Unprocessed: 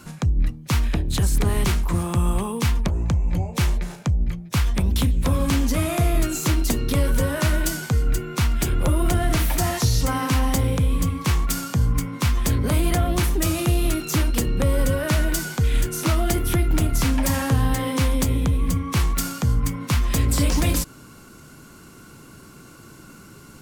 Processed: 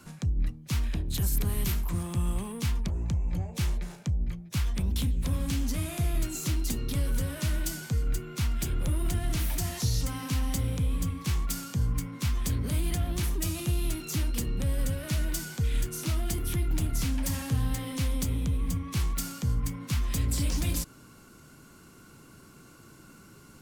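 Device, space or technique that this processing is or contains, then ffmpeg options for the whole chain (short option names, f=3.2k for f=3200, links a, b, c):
one-band saturation: -filter_complex "[0:a]asettb=1/sr,asplit=3[a][b][c];[a]atrim=end=1.144[d];[b]atrim=start=1.14:end=1.9,asetpts=PTS-STARTPTS,afade=t=in:d=0.004:c=qsin,afade=t=out:st=0.756:d=0.004:c=qsin,equalizer=f=13k:w=2.7:g=14.5[e];[c]atrim=start=1.896[f];[d][e]acrossfade=d=0.004:c1=hsin:c2=qsin[g];[g][f]acrossfade=d=0.004:c1=qsin:c2=hsin,acrossover=split=270|2400[h][i][j];[i]asoftclip=type=tanh:threshold=-34.5dB[k];[h][k][j]amix=inputs=3:normalize=0,volume=-7.5dB"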